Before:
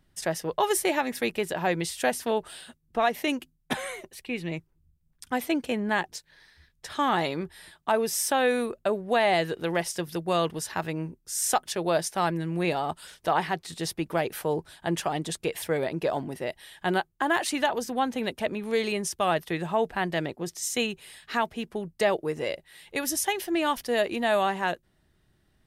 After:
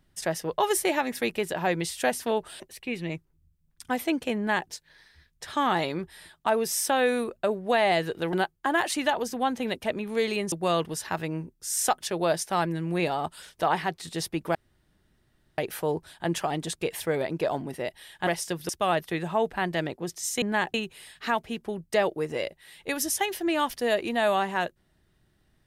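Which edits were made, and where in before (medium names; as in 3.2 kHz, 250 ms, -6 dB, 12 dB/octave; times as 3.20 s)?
2.60–4.02 s: delete
5.79–6.11 s: copy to 20.81 s
9.75–10.17 s: swap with 16.89–19.08 s
14.20 s: insert room tone 1.03 s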